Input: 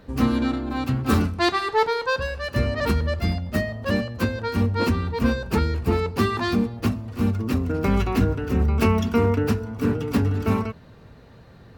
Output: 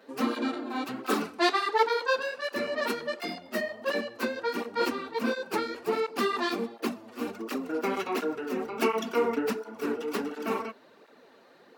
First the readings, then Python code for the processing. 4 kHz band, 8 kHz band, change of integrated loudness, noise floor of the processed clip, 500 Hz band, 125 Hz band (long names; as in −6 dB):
−3.0 dB, −3.0 dB, −7.0 dB, −57 dBFS, −3.5 dB, −28.0 dB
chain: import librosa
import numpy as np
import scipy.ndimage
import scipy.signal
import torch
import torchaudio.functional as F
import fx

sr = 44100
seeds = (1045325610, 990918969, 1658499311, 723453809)

y = scipy.signal.sosfilt(scipy.signal.butter(4, 290.0, 'highpass', fs=sr, output='sos'), x)
y = fx.flanger_cancel(y, sr, hz=1.4, depth_ms=7.1)